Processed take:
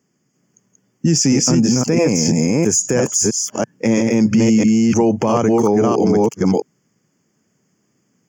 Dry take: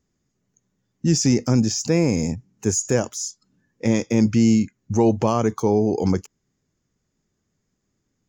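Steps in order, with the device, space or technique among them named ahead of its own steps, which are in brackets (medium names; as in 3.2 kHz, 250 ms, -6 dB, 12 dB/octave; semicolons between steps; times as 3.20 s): chunks repeated in reverse 331 ms, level -0.5 dB; PA system with an anti-feedback notch (high-pass 130 Hz 24 dB/octave; Butterworth band-stop 3.9 kHz, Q 3.2; peak limiter -15 dBFS, peak gain reduction 11 dB); trim +8.5 dB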